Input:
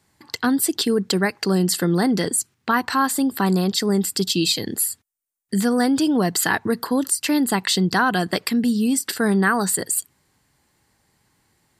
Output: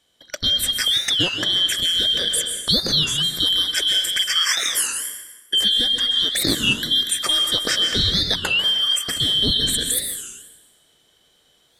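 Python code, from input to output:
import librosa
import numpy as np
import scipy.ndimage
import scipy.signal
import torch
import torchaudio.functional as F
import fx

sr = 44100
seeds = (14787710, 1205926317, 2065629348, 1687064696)

y = fx.band_shuffle(x, sr, order='2413')
y = fx.peak_eq(y, sr, hz=10000.0, db=11.5, octaves=0.43, at=(3.38, 4.06))
y = fx.rev_plate(y, sr, seeds[0], rt60_s=1.2, hf_ratio=0.9, predelay_ms=115, drr_db=4.5)
y = fx.rider(y, sr, range_db=10, speed_s=0.5)
y = fx.high_shelf(y, sr, hz=7600.0, db=-4.5)
y = fx.record_warp(y, sr, rpm=33.33, depth_cents=250.0)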